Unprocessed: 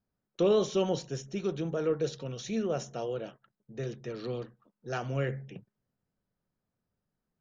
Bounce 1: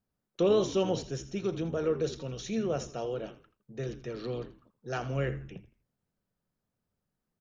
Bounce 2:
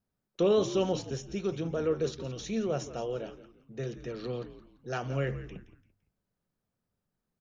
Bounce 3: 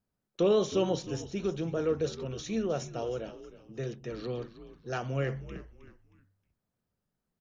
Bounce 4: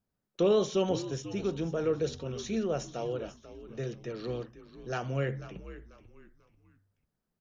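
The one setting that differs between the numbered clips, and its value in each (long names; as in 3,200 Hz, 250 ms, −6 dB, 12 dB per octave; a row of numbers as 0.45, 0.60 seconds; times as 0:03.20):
echo with shifted repeats, delay time: 82, 170, 314, 491 milliseconds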